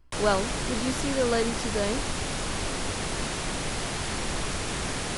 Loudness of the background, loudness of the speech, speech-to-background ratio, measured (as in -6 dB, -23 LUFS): -30.5 LUFS, -29.0 LUFS, 1.5 dB